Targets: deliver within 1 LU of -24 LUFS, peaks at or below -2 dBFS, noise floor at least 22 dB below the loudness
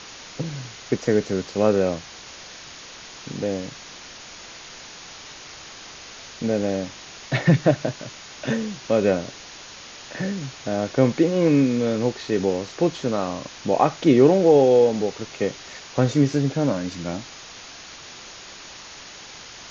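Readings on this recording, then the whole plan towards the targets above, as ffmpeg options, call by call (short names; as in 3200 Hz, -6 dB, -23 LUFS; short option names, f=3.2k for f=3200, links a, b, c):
noise floor -41 dBFS; noise floor target -44 dBFS; loudness -22.0 LUFS; peak -4.0 dBFS; loudness target -24.0 LUFS
-> -af "afftdn=nr=6:nf=-41"
-af "volume=-2dB"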